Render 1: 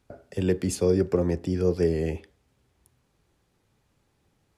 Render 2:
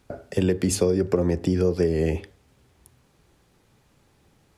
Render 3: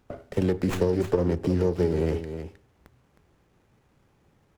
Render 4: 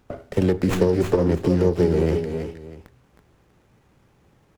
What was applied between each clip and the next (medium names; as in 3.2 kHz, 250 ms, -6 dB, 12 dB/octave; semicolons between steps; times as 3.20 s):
hum notches 50/100 Hz; compression 12:1, threshold -25 dBFS, peak gain reduction 9.5 dB; trim +8.5 dB
delay 313 ms -9.5 dB; sliding maximum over 9 samples; trim -2.5 dB
delay 330 ms -9 dB; trim +4.5 dB